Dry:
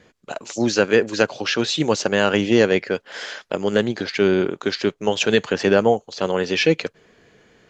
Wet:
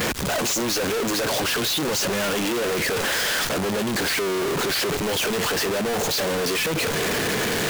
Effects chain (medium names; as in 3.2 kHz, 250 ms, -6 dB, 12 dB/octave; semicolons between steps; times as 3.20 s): one-bit comparator; high-pass 45 Hz 24 dB/octave; saturation -27.5 dBFS, distortion -12 dB; trim +4.5 dB